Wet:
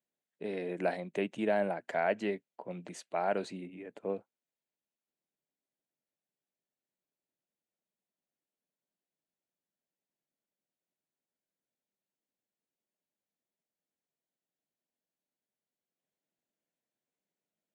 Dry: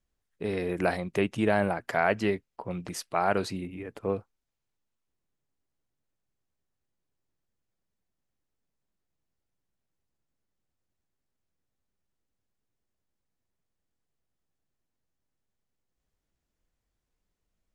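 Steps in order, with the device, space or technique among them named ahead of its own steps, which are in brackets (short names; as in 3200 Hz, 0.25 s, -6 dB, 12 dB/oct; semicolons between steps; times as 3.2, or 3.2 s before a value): television speaker (speaker cabinet 170–8400 Hz, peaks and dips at 610 Hz +5 dB, 1200 Hz -8 dB, 5200 Hz -10 dB); gain -6.5 dB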